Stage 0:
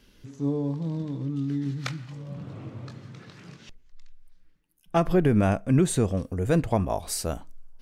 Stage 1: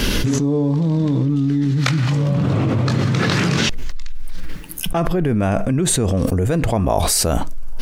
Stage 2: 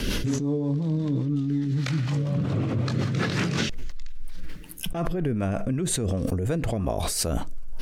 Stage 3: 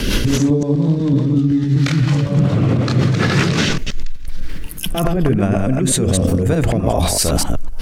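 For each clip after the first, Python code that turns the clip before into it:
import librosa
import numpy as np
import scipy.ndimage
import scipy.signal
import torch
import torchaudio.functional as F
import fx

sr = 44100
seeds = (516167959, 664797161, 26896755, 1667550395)

y1 = fx.env_flatten(x, sr, amount_pct=100)
y2 = fx.rotary(y1, sr, hz=5.5)
y2 = y2 * librosa.db_to_amplitude(-6.5)
y3 = fx.reverse_delay(y2, sr, ms=126, wet_db=-2.5)
y3 = y3 * librosa.db_to_amplitude(8.5)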